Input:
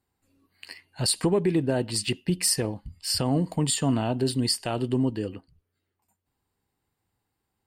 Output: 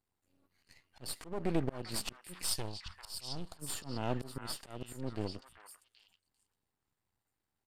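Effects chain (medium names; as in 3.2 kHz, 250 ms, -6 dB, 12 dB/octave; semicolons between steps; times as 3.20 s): half-wave rectifier; slow attack 309 ms; 2.45–3.62 s: graphic EQ 125/250/500/2000/4000 Hz -4/-10/-7/-8/+5 dB; repeats whose band climbs or falls 395 ms, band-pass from 1.5 kHz, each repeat 1.4 oct, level -2 dB; resampled via 32 kHz; trim -4 dB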